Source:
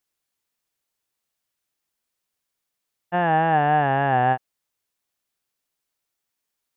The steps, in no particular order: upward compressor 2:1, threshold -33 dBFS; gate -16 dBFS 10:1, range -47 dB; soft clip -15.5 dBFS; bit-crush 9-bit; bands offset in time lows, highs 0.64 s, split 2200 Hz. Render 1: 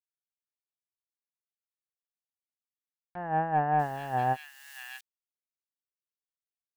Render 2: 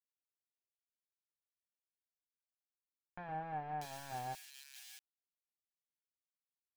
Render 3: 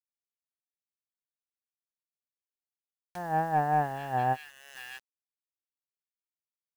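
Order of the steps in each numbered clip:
gate > soft clip > bit-crush > bands offset in time > upward compressor; soft clip > gate > bit-crush > upward compressor > bands offset in time; gate > soft clip > bands offset in time > bit-crush > upward compressor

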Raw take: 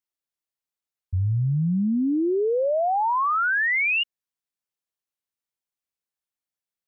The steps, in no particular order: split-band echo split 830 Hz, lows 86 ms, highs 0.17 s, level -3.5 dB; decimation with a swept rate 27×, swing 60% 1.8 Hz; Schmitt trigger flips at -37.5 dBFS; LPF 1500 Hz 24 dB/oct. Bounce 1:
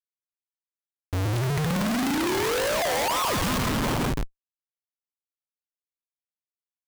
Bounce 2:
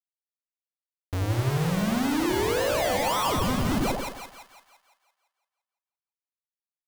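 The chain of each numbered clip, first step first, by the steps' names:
LPF > decimation with a swept rate > split-band echo > Schmitt trigger; LPF > Schmitt trigger > decimation with a swept rate > split-band echo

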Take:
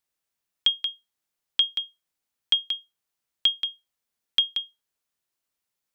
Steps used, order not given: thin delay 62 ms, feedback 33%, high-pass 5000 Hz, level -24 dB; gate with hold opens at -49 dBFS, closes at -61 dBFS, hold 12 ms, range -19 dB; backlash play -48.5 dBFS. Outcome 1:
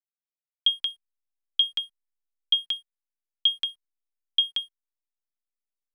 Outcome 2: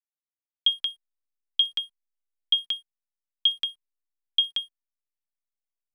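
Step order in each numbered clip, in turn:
gate with hold > thin delay > backlash; thin delay > gate with hold > backlash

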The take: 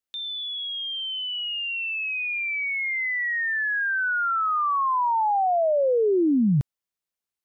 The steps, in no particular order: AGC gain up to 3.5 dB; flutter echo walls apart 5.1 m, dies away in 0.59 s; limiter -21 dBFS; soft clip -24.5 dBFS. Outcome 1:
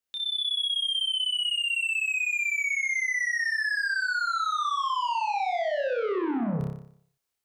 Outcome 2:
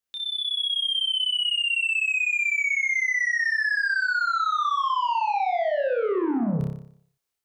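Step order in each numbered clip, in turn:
AGC > soft clip > flutter echo > limiter; soft clip > flutter echo > limiter > AGC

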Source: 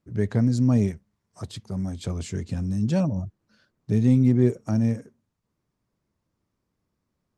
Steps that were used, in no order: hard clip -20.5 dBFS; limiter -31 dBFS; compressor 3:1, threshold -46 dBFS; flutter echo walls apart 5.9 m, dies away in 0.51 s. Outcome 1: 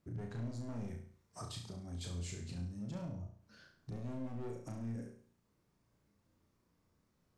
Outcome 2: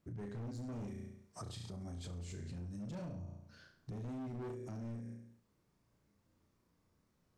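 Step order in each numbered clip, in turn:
hard clip > limiter > compressor > flutter echo; flutter echo > hard clip > limiter > compressor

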